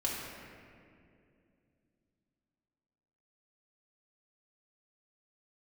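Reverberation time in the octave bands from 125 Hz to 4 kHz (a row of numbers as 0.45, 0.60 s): 3.5, 3.6, 2.9, 2.0, 2.1, 1.4 s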